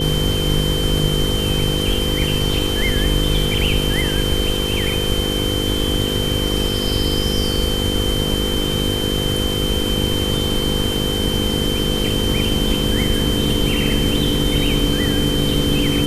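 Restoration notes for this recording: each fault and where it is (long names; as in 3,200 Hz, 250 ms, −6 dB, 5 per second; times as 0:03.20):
mains buzz 50 Hz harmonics 10 −23 dBFS
whistle 3,100 Hz −23 dBFS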